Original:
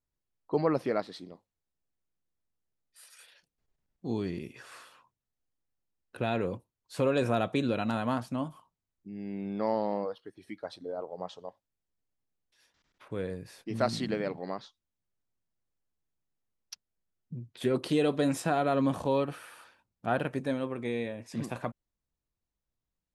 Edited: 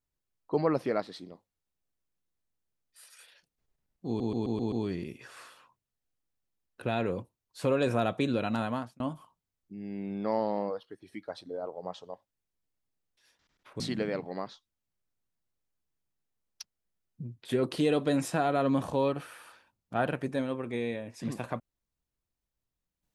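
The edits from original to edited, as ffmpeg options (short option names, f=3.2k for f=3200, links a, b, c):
-filter_complex "[0:a]asplit=8[a][b][c][d][e][f][g][h];[a]atrim=end=4.202[i];[b]atrim=start=4.068:end=4.202[j];[c]atrim=start=4.068:end=4.202[k];[d]atrim=start=4.068:end=4.202[l];[e]atrim=start=4.068:end=4.202[m];[f]atrim=start=4.068:end=8.35,asetpts=PTS-STARTPTS,afade=t=out:st=3.932:d=0.35[n];[g]atrim=start=8.35:end=13.152,asetpts=PTS-STARTPTS,afade=t=in:d=0.004:c=hsin[o];[h]atrim=start=13.918[p];[i][j]acrossfade=d=0.004:c1=hsin:c2=hsin[q];[q][k]acrossfade=d=0.004:c1=hsin:c2=hsin[r];[r][l]acrossfade=d=0.004:c1=hsin:c2=hsin[s];[s][m]acrossfade=d=0.004:c1=hsin:c2=hsin[t];[n][o]concat=n=2:v=0:a=1[u];[t][u]acrossfade=d=0.004:c1=hsin:c2=hsin[v];[v][p]acrossfade=d=0.004:c1=hsin:c2=hsin"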